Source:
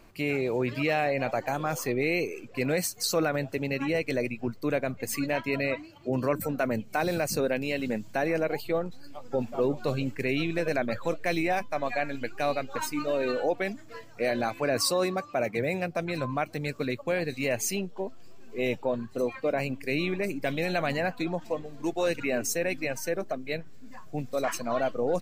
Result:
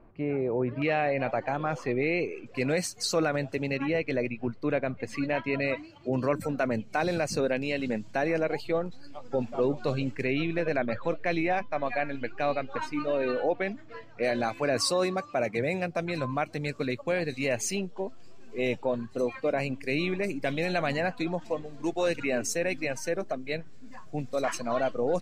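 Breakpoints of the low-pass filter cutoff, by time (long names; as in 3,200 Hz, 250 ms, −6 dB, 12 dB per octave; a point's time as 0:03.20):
1,100 Hz
from 0:00.82 3,000 Hz
from 0:02.46 7,800 Hz
from 0:03.77 3,400 Hz
from 0:05.62 6,700 Hz
from 0:10.27 3,400 Hz
from 0:14.23 9,000 Hz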